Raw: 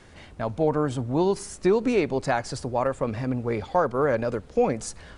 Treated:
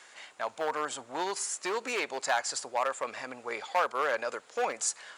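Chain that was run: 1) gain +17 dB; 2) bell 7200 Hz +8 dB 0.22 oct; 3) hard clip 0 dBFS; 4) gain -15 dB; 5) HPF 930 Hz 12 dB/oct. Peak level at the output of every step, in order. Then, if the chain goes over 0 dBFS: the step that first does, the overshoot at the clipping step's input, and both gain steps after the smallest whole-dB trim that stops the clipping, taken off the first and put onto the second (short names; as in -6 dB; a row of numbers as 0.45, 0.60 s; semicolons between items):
+7.0, +7.0, 0.0, -15.0, -15.0 dBFS; step 1, 7.0 dB; step 1 +10 dB, step 4 -8 dB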